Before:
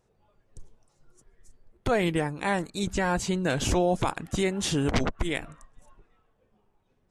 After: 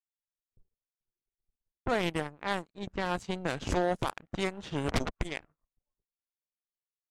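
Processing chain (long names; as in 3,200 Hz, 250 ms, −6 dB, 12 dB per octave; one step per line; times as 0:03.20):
power curve on the samples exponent 2
low-pass that shuts in the quiet parts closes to 620 Hz, open at −27 dBFS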